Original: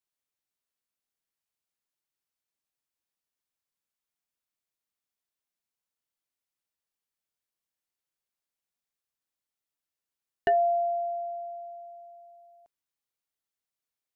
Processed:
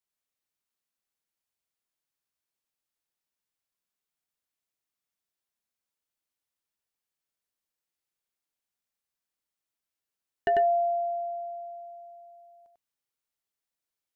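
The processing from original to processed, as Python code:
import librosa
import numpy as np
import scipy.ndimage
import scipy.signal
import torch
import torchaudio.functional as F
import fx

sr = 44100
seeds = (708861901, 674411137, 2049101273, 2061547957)

y = x + 10.0 ** (-3.0 / 20.0) * np.pad(x, (int(96 * sr / 1000.0), 0))[:len(x)]
y = F.gain(torch.from_numpy(y), -1.5).numpy()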